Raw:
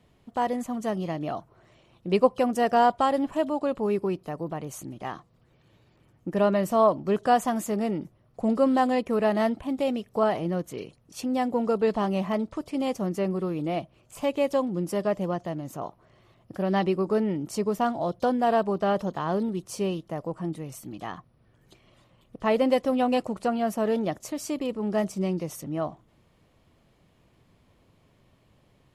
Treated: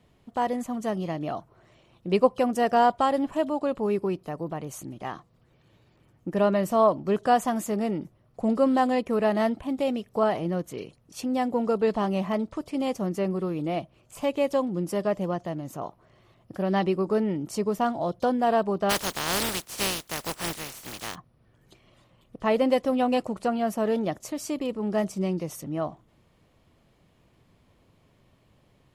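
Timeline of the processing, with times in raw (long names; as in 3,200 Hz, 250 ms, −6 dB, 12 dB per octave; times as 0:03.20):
0:18.89–0:21.14: compressing power law on the bin magnitudes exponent 0.27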